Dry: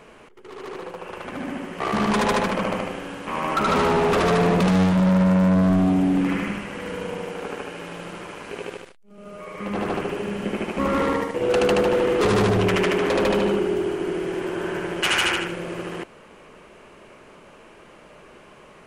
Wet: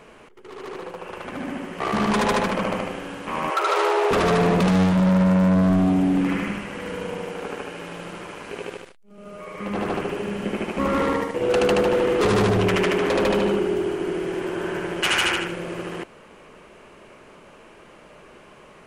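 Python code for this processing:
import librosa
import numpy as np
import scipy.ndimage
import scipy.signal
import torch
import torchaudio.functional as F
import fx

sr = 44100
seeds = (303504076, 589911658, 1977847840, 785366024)

y = fx.steep_highpass(x, sr, hz=340.0, slope=96, at=(3.5, 4.11))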